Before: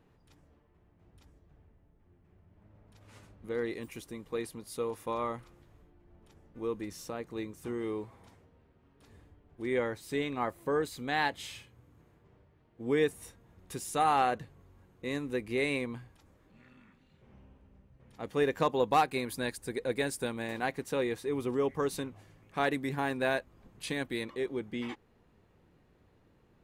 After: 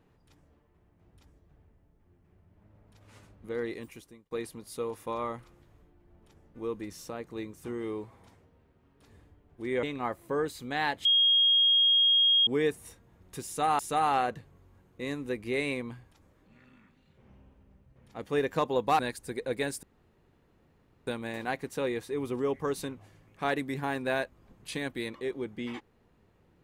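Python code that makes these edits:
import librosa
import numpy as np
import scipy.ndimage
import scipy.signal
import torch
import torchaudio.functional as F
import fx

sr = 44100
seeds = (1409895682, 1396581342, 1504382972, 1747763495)

y = fx.edit(x, sr, fx.fade_out_span(start_s=3.77, length_s=0.54),
    fx.cut(start_s=9.83, length_s=0.37),
    fx.bleep(start_s=11.42, length_s=1.42, hz=3260.0, db=-19.5),
    fx.repeat(start_s=13.83, length_s=0.33, count=2),
    fx.cut(start_s=19.03, length_s=0.35),
    fx.insert_room_tone(at_s=20.22, length_s=1.24), tone=tone)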